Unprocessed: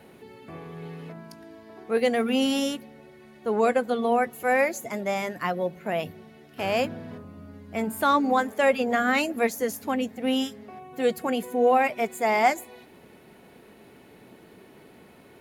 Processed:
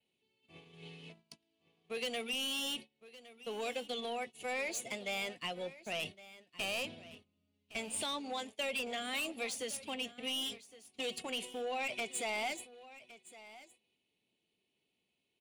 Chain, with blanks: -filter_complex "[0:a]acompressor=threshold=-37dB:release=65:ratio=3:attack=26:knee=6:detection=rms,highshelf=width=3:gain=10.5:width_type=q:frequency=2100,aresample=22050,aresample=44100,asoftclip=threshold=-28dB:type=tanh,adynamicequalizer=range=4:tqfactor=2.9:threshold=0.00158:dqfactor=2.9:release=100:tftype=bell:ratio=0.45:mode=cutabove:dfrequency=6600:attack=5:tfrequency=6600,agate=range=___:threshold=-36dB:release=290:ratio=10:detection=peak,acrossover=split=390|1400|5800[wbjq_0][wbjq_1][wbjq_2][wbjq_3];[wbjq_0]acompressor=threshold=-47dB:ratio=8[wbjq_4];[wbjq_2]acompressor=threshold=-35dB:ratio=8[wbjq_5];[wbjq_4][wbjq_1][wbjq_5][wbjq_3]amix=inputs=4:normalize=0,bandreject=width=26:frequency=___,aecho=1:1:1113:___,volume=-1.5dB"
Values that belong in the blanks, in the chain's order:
-34dB, 5100, 0.133